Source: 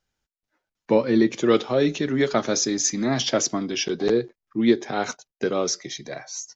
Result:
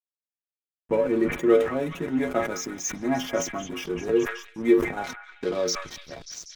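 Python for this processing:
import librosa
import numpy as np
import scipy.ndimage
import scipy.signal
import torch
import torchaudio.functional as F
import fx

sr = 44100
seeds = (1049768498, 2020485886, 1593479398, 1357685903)

y = fx.stiff_resonator(x, sr, f0_hz=83.0, decay_s=0.3, stiffness=0.008)
y = fx.dynamic_eq(y, sr, hz=2300.0, q=3.4, threshold_db=-51.0, ratio=4.0, max_db=4)
y = fx.backlash(y, sr, play_db=-35.5)
y = fx.peak_eq(y, sr, hz=4500.0, db=fx.steps((0.0, -14.5), (5.04, 3.0)), octaves=0.93)
y = fx.echo_stepped(y, sr, ms=195, hz=1700.0, octaves=0.7, feedback_pct=70, wet_db=-6.5)
y = fx.sustainer(y, sr, db_per_s=100.0)
y = y * librosa.db_to_amplitude(5.5)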